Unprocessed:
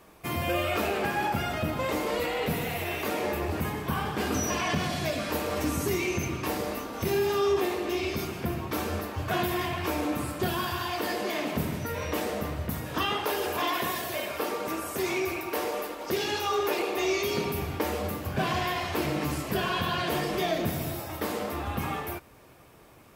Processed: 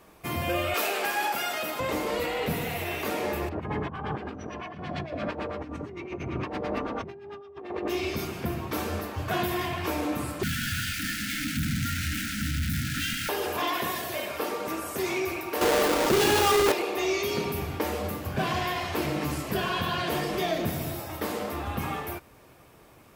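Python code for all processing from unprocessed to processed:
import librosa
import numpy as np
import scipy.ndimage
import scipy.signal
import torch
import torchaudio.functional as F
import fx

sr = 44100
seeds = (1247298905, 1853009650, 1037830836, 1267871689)

y = fx.chain(x, sr, fx.highpass(hz=430.0, slope=12),
    fx.high_shelf(hz=3100.0, db=9.0), at=(0.74, 1.8))
y = fx.chain(y, sr, fx.over_compress(threshold_db=-33.0, ratio=-0.5),
    fx.filter_lfo_lowpass(shape='sine', hz=8.9, low_hz=670.0, high_hz=3500.0, q=0.9), at=(3.49, 7.88))
y = fx.chain(y, sr, fx.high_shelf(hz=3600.0, db=-11.5),
    fx.quant_companded(bits=2),
    fx.brickwall_bandstop(low_hz=300.0, high_hz=1300.0), at=(10.43, 13.29))
y = fx.chain(y, sr, fx.halfwave_hold(),
    fx.env_flatten(amount_pct=70), at=(15.61, 16.72))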